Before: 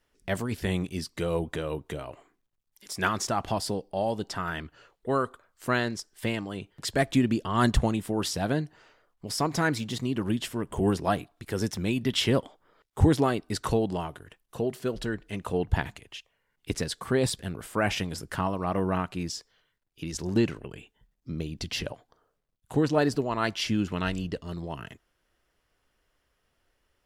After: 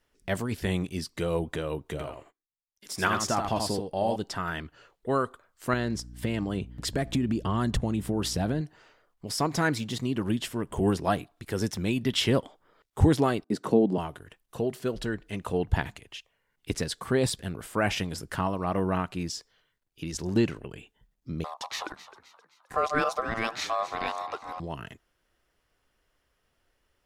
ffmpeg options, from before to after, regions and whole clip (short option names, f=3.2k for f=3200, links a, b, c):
-filter_complex "[0:a]asettb=1/sr,asplit=3[a][b][c];[a]atrim=end=1.914[d];[b]atrim=start=1.91:end=4.16,asetpts=PTS-STARTPTS,afade=t=in:d=0.004:c=qsin,afade=t=out:st=2.246:d=0.004:c=qsin,aecho=1:1:82:0.562,atrim=end_sample=99225,agate=range=-27dB:threshold=-60dB:ratio=16:release=100:detection=peak,asplit=2[e][f];[f]adelay=13,volume=-14dB[g];[e][g]amix=inputs=2:normalize=0,atrim=end_sample=99225[h];[c]atrim=start=4.156[i];[d][h]acrossfade=d=0.004:c1=hsin:c2=qsin[j];[j][i]acrossfade=d=0.004:c1=qsin:c2=hsin,asettb=1/sr,asplit=3[k][l][m];[k]atrim=end=5.734[n];[l]atrim=start=5.73:end=8.61,asetpts=PTS-STARTPTS,afade=t=in:d=0.004:c=qsin,afade=t=out:st=2.876:d=0.004:c=qsin,lowshelf=f=480:g=7,acompressor=threshold=-23dB:ratio=5:attack=3.2:release=140:knee=1:detection=peak,aeval=exprs='val(0)+0.00708*(sin(2*PI*60*n/s)+sin(2*PI*2*60*n/s)/2+sin(2*PI*3*60*n/s)/3+sin(2*PI*4*60*n/s)/4+sin(2*PI*5*60*n/s)/5)':c=same[o];[m]atrim=start=8.606[p];[n][o]acrossfade=d=0.004:c1=hsin:c2=qsin[q];[q][p]acrossfade=d=0.004:c1=qsin:c2=hsin,asettb=1/sr,asplit=3[r][s][t];[r]atrim=end=13.444[u];[s]atrim=start=13.44:end=13.98,asetpts=PTS-STARTPTS,afade=t=in:d=0.004:c=qsin,afade=t=out:st=0.536:d=0.004:c=qsin,agate=range=-33dB:threshold=-57dB:ratio=3:release=100:detection=peak,highpass=f=190:w=0.5412,highpass=f=190:w=1.3066,tiltshelf=f=690:g=9.5[v];[t]atrim=start=13.976[w];[u][v]acrossfade=d=0.004:c1=hsin:c2=qsin[x];[x][w]acrossfade=d=0.004:c1=qsin:c2=hsin,asettb=1/sr,asplit=3[y][z][aa];[y]atrim=end=21.444[ab];[z]atrim=start=21.44:end=24.6,asetpts=PTS-STARTPTS,afade=t=in:d=0.004:c=qsin,afade=t=out:st=3.156:d=0.004:c=qsin,aeval=exprs='val(0)*sin(2*PI*900*n/s)':c=same,asplit=5[ac][ad][ae][af][ag];[ad]adelay=261,afreqshift=70,volume=-15.5dB[ah];[ae]adelay=522,afreqshift=140,volume=-22.4dB[ai];[af]adelay=783,afreqshift=210,volume=-29.4dB[aj];[ag]adelay=1044,afreqshift=280,volume=-36.3dB[ak];[ac][ah][ai][aj][ak]amix=inputs=5:normalize=0,atrim=end_sample=139356[al];[aa]atrim=start=24.596[am];[ab][al]acrossfade=d=0.004:c1=hsin:c2=qsin[an];[an][am]acrossfade=d=0.004:c1=qsin:c2=hsin"